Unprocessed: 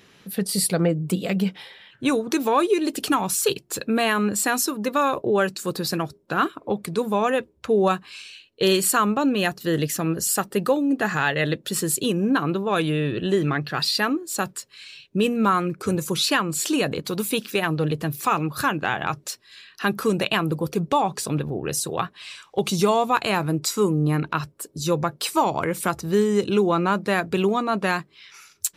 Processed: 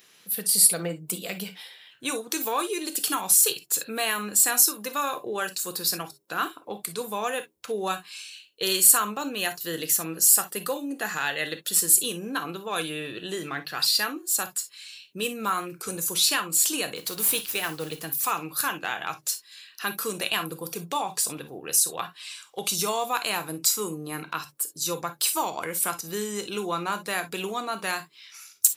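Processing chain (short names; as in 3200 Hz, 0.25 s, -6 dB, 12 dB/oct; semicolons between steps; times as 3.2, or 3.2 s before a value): RIAA curve recording; 16.96–18.05 modulation noise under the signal 13 dB; non-linear reverb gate 80 ms flat, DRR 8.5 dB; gain -7 dB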